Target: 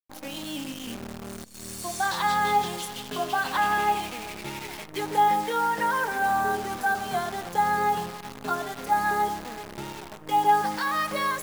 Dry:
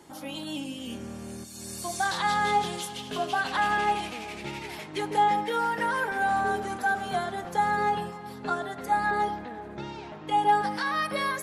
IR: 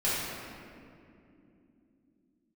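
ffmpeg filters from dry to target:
-af "adynamicequalizer=threshold=0.0141:dfrequency=1000:dqfactor=2.7:tfrequency=1000:tqfactor=2.7:attack=5:release=100:ratio=0.375:range=2:mode=boostabove:tftype=bell,anlmdn=0.0631,acrusher=bits=7:dc=4:mix=0:aa=0.000001"

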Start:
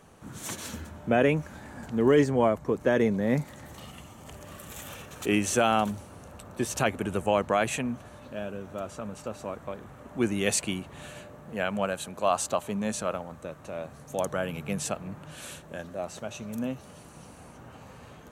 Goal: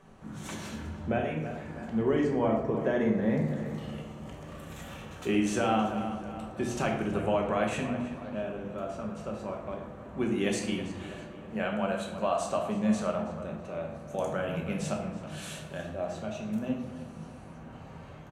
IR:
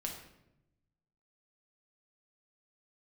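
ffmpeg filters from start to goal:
-filter_complex "[0:a]asettb=1/sr,asplit=3[link_01][link_02][link_03];[link_01]atrim=end=1.184[link_04];[link_02]atrim=start=1.18:end=1.86,asetpts=PTS-STARTPTS,afade=type=in:duration=0.004:curve=qsin,afade=type=out:start_time=0.676:duration=0.004:curve=qsin,acrossover=split=330|2600[link_05][link_06][link_07];[link_05]acompressor=threshold=-40dB:ratio=4[link_08];[link_06]acompressor=threshold=-34dB:ratio=4[link_09];[link_07]acompressor=threshold=-41dB:ratio=4[link_10];[link_08][link_09][link_10]amix=inputs=3:normalize=0[link_11];[link_03]atrim=start=1.856[link_12];[link_04][link_11]acrossfade=duration=0.004:curve1=hsin:curve2=qsin[link_13];[link_13][link_12]acrossfade=duration=0.004:curve1=qsin:curve2=hsin,asettb=1/sr,asplit=3[link_14][link_15][link_16];[link_14]atrim=end=15.274[link_17];[link_15]atrim=start=15.27:end=15.86,asetpts=PTS-STARTPTS,afade=type=in:duration=0.004:curve=qsin,afade=type=out:start_time=0.586:duration=0.004:curve=qsin,highshelf=frequency=2900:gain=9.5[link_18];[link_16]atrim=start=15.856[link_19];[link_17][link_18]acrossfade=duration=0.004:curve1=hsin:curve2=qsin[link_20];[link_20][link_19]acrossfade=duration=0.004:curve1=qsin:curve2=hsin,asplit=2[link_21][link_22];[link_22]adelay=325,lowpass=frequency=3700:poles=1,volume=-14dB,asplit=2[link_23][link_24];[link_24]adelay=325,lowpass=frequency=3700:poles=1,volume=0.51,asplit=2[link_25][link_26];[link_26]adelay=325,lowpass=frequency=3700:poles=1,volume=0.51,asplit=2[link_27][link_28];[link_28]adelay=325,lowpass=frequency=3700:poles=1,volume=0.51,asplit=2[link_29][link_30];[link_30]adelay=325,lowpass=frequency=3700:poles=1,volume=0.51[link_31];[link_21][link_23][link_25][link_27][link_29][link_31]amix=inputs=6:normalize=0,acompressor=threshold=-25dB:ratio=2,aemphasis=mode=reproduction:type=50kf[link_32];[1:a]atrim=start_sample=2205[link_33];[link_32][link_33]afir=irnorm=-1:irlink=0"

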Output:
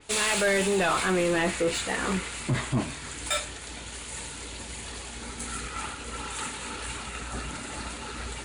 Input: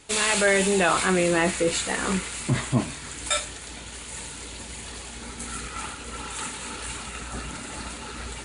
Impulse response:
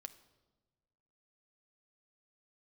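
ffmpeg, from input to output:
-af "equalizer=frequency=190:width_type=o:width=0.77:gain=-2,asoftclip=type=tanh:threshold=-18dB,adynamicequalizer=threshold=0.00891:dfrequency=4400:dqfactor=0.7:tfrequency=4400:tqfactor=0.7:attack=5:release=100:ratio=0.375:range=2.5:mode=cutabove:tftype=highshelf"

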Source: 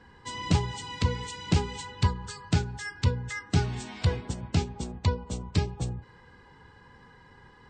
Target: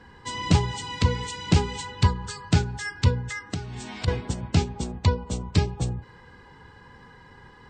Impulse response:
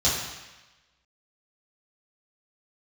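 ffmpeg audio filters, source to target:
-filter_complex "[0:a]asettb=1/sr,asplit=3[link_01][link_02][link_03];[link_01]atrim=end=3.204[link_04];[link_02]atrim=start=3.2:end=4.08,asetpts=PTS-STARTPTS,afade=type=in:duration=0.004:curve=qsin,afade=type=out:start_time=0.876:duration=0.004:curve=qsin,acompressor=threshold=-34dB:ratio=5[link_05];[link_03]atrim=start=4.076[link_06];[link_04][link_05]acrossfade=duration=0.004:curve1=hsin:curve2=qsin[link_07];[link_07][link_06]acrossfade=duration=0.004:curve1=qsin:curve2=hsin,volume=4.5dB"

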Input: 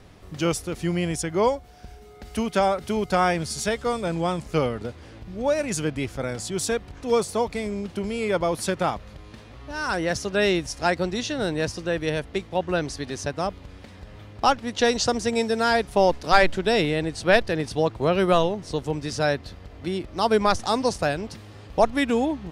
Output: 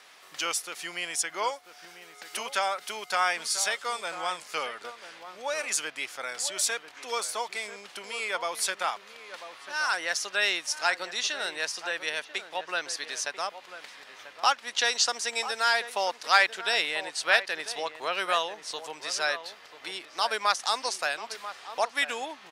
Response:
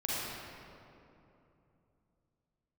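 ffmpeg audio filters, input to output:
-filter_complex "[0:a]asplit=2[link_01][link_02];[link_02]acompressor=threshold=-33dB:ratio=6,volume=-0.5dB[link_03];[link_01][link_03]amix=inputs=2:normalize=0,highpass=1200,asplit=2[link_04][link_05];[link_05]adelay=991.3,volume=-11dB,highshelf=frequency=4000:gain=-22.3[link_06];[link_04][link_06]amix=inputs=2:normalize=0"

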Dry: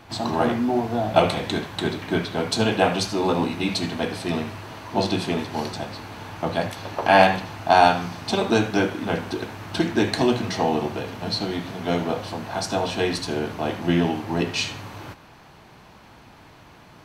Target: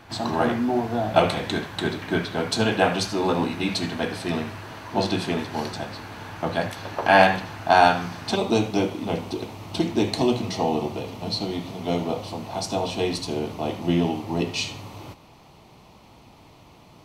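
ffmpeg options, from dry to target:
ffmpeg -i in.wav -af "asetnsamples=nb_out_samples=441:pad=0,asendcmd='8.36 equalizer g -15',equalizer=frequency=1600:width_type=o:width=0.44:gain=3,volume=-1dB" out.wav

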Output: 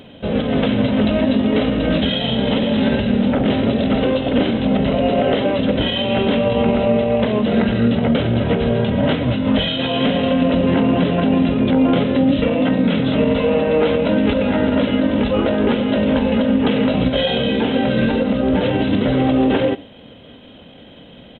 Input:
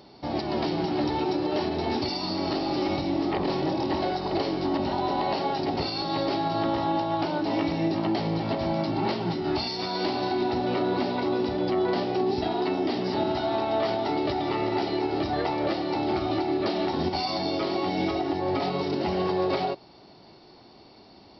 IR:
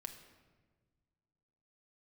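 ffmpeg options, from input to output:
-filter_complex "[0:a]asetrate=31183,aresample=44100,atempo=1.41421,asplit=2[link_01][link_02];[1:a]atrim=start_sample=2205,afade=type=out:start_time=0.21:duration=0.01,atrim=end_sample=9702,asetrate=61740,aresample=44100[link_03];[link_02][link_03]afir=irnorm=-1:irlink=0,volume=2.5dB[link_04];[link_01][link_04]amix=inputs=2:normalize=0,volume=6.5dB"

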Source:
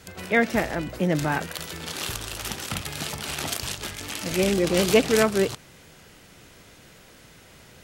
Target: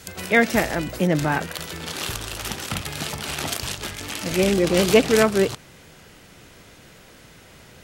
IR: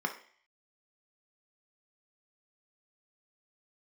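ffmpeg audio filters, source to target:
-af "asetnsamples=nb_out_samples=441:pad=0,asendcmd='1.07 equalizer g -2',equalizer=frequency=13000:width_type=o:width=2.4:gain=6,volume=3dB"

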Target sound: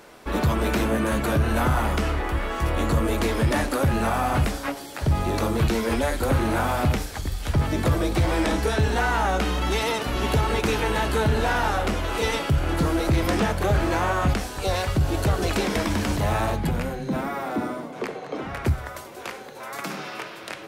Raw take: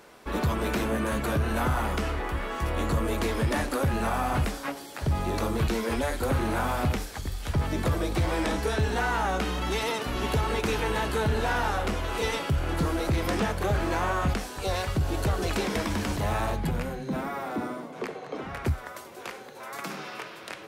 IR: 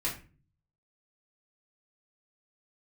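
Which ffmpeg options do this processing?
-filter_complex "[0:a]asplit=2[link_01][link_02];[1:a]atrim=start_sample=2205,lowpass=frequency=1300:width=0.5412,lowpass=frequency=1300:width=1.3066[link_03];[link_02][link_03]afir=irnorm=-1:irlink=0,volume=-19.5dB[link_04];[link_01][link_04]amix=inputs=2:normalize=0,volume=4dB"

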